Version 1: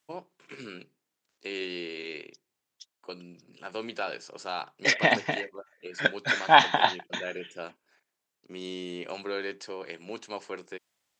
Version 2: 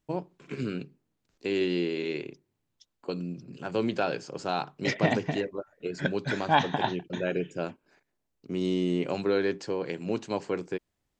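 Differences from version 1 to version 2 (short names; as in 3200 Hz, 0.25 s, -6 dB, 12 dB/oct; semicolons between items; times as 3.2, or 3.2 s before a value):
second voice -9.5 dB; master: remove HPF 1000 Hz 6 dB/oct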